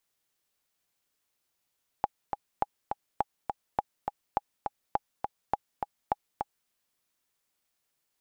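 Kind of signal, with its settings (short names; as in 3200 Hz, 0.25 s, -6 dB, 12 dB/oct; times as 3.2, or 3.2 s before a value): metronome 206 bpm, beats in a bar 2, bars 8, 823 Hz, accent 5 dB -12 dBFS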